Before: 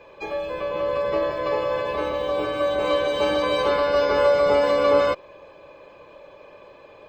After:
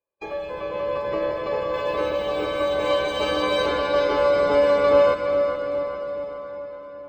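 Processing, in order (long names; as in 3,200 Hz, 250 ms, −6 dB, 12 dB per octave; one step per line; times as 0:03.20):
high-shelf EQ 2,500 Hz −4 dB, from 0:01.74 +3.5 dB, from 0:03.66 −3 dB
noise gate −40 dBFS, range −41 dB
feedback echo with a low-pass in the loop 414 ms, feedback 52%, low-pass 3,800 Hz, level −8 dB
convolution reverb RT60 5.6 s, pre-delay 57 ms, DRR 6.5 dB
level −1.5 dB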